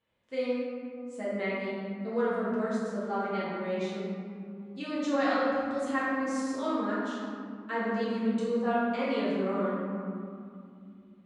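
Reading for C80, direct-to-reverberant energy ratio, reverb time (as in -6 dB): -0.5 dB, -10.0 dB, 2.5 s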